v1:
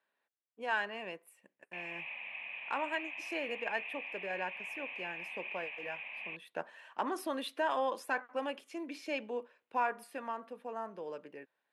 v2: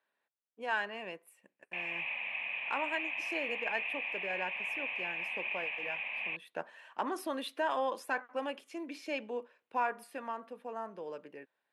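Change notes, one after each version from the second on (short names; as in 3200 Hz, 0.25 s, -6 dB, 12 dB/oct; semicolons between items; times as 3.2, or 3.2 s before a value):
background +6.0 dB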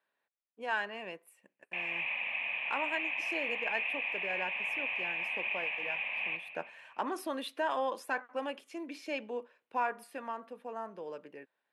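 reverb: on, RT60 2.0 s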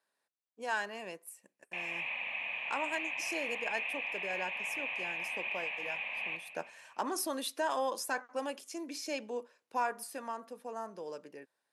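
master: add resonant high shelf 4100 Hz +11.5 dB, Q 1.5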